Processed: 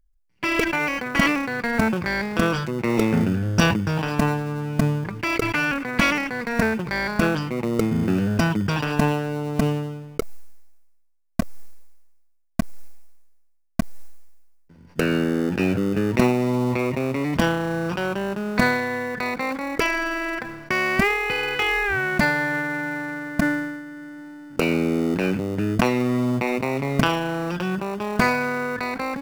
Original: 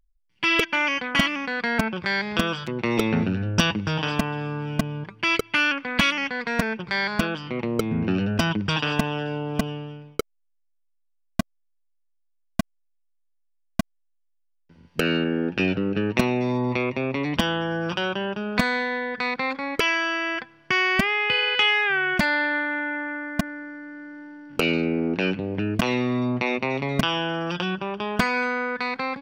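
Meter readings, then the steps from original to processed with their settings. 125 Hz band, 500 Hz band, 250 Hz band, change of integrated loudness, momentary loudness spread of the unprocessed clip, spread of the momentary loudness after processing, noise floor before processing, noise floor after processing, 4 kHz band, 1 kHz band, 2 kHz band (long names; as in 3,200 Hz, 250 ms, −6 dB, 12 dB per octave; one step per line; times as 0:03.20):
+4.0 dB, +2.5 dB, +3.0 dB, +1.0 dB, 11 LU, 9 LU, −69 dBFS, −56 dBFS, −5.5 dB, +1.5 dB, 0.0 dB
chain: parametric band 3,300 Hz −10.5 dB 0.58 octaves
in parallel at −10 dB: decimation without filtering 27×
on the sum: level that may fall only so fast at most 45 dB per second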